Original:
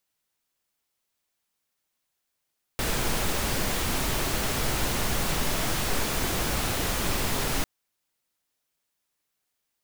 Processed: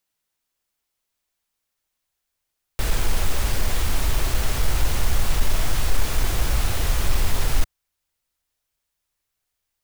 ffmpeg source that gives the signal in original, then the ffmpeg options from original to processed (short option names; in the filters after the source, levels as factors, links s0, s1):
-f lavfi -i "anoisesrc=c=pink:a=0.243:d=4.85:r=44100:seed=1"
-af "volume=12.6,asoftclip=hard,volume=0.0794,asubboost=boost=5.5:cutoff=85"